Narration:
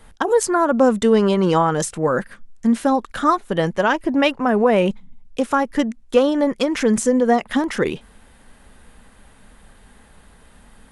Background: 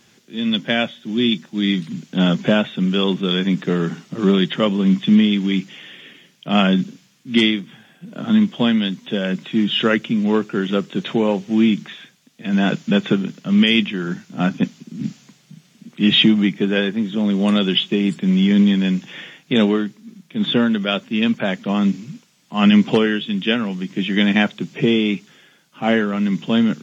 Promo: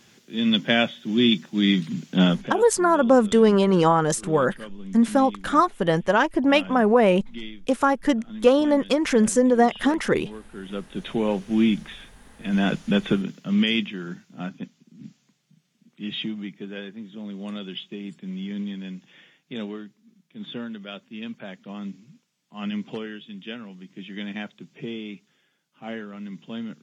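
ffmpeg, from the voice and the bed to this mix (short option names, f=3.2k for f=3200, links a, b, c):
-filter_complex "[0:a]adelay=2300,volume=-1.5dB[a];[1:a]volume=16.5dB,afade=t=out:st=2.21:d=0.32:silence=0.0891251,afade=t=in:st=10.48:d=0.92:silence=0.133352,afade=t=out:st=13.18:d=1.49:silence=0.237137[b];[a][b]amix=inputs=2:normalize=0"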